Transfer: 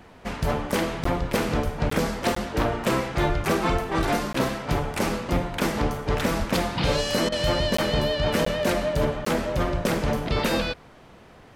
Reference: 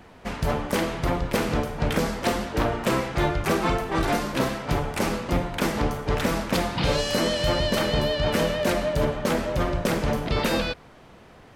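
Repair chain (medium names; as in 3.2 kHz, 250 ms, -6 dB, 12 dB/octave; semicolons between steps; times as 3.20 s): de-plosive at 1.64/3.28/3.72/6.38 s; interpolate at 1.04/1.90/2.35/4.33/7.77/8.45/9.25 s, 14 ms; interpolate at 7.29 s, 30 ms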